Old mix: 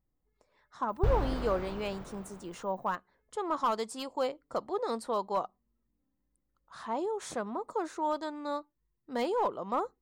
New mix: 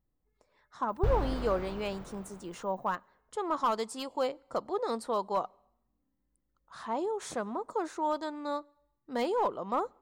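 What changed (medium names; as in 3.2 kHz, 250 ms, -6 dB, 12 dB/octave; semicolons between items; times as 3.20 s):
background -4.0 dB; reverb: on, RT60 0.85 s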